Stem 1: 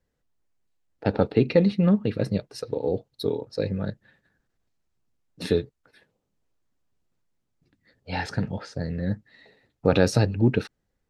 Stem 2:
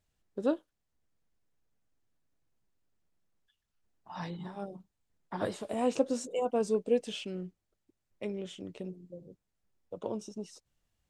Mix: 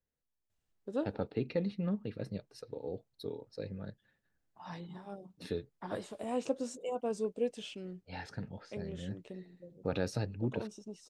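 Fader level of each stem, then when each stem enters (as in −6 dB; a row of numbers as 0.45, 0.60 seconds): −14.5, −5.5 decibels; 0.00, 0.50 seconds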